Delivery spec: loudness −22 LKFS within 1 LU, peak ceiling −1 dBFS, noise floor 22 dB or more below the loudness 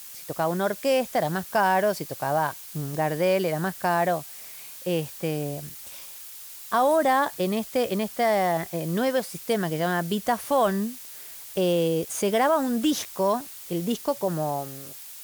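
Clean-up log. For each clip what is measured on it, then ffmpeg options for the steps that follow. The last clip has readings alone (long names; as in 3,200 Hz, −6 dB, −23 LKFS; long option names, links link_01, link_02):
background noise floor −42 dBFS; target noise floor −48 dBFS; integrated loudness −25.5 LKFS; sample peak −10.5 dBFS; target loudness −22.0 LKFS
→ -af "afftdn=noise_reduction=6:noise_floor=-42"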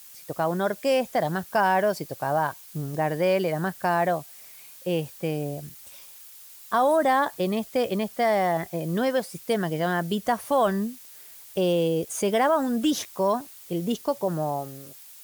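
background noise floor −47 dBFS; target noise floor −48 dBFS
→ -af "afftdn=noise_reduction=6:noise_floor=-47"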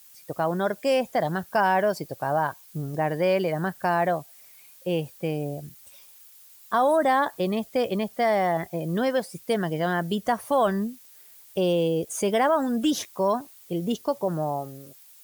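background noise floor −51 dBFS; integrated loudness −25.5 LKFS; sample peak −11.0 dBFS; target loudness −22.0 LKFS
→ -af "volume=3.5dB"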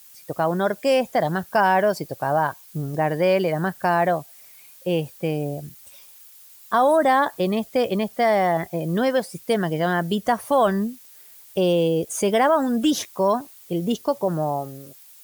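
integrated loudness −22.0 LKFS; sample peak −7.5 dBFS; background noise floor −48 dBFS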